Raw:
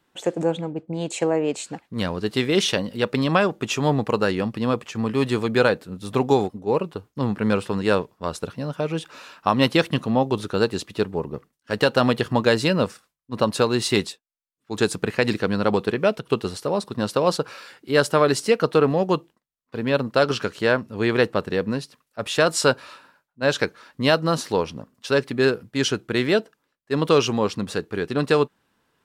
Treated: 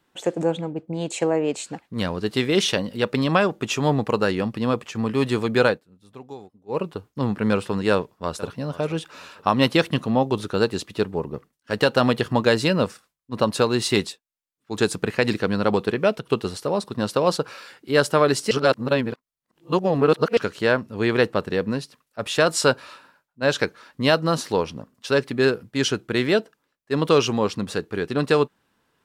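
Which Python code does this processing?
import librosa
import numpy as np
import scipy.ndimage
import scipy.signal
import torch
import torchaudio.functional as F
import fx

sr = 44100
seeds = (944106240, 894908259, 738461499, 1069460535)

y = fx.echo_throw(x, sr, start_s=7.91, length_s=0.62, ms=480, feedback_pct=35, wet_db=-16.5)
y = fx.edit(y, sr, fx.fade_down_up(start_s=5.69, length_s=1.11, db=-20.0, fade_s=0.12),
    fx.reverse_span(start_s=18.51, length_s=1.86), tone=tone)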